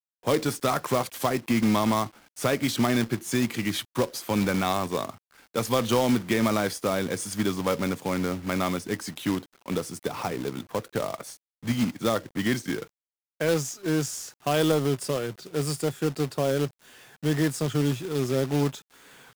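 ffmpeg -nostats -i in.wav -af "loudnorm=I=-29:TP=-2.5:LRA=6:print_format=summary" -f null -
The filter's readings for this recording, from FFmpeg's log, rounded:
Input Integrated:    -27.3 LUFS
Input True Peak:      -9.9 dBTP
Input LRA:             3.9 LU
Input Threshold:     -37.6 LUFS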